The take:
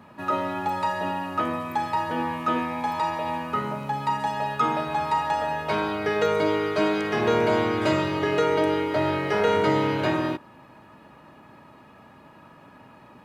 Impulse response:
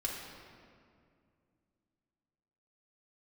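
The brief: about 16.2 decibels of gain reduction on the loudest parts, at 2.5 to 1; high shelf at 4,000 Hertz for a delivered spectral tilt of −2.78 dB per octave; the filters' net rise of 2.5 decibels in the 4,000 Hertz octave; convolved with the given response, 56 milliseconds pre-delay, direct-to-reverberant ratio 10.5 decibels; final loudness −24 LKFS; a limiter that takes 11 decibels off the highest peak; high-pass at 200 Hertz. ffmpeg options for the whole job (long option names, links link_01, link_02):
-filter_complex "[0:a]highpass=200,highshelf=frequency=4000:gain=-6.5,equalizer=frequency=4000:width_type=o:gain=7,acompressor=threshold=-44dB:ratio=2.5,alimiter=level_in=13.5dB:limit=-24dB:level=0:latency=1,volume=-13.5dB,asplit=2[link_01][link_02];[1:a]atrim=start_sample=2205,adelay=56[link_03];[link_02][link_03]afir=irnorm=-1:irlink=0,volume=-13.5dB[link_04];[link_01][link_04]amix=inputs=2:normalize=0,volume=22dB"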